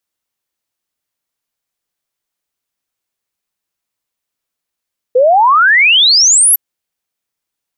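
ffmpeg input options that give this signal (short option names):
-f lavfi -i "aevalsrc='0.562*clip(min(t,1.41-t)/0.01,0,1)*sin(2*PI*480*1.41/log(12000/480)*(exp(log(12000/480)*t/1.41)-1))':d=1.41:s=44100"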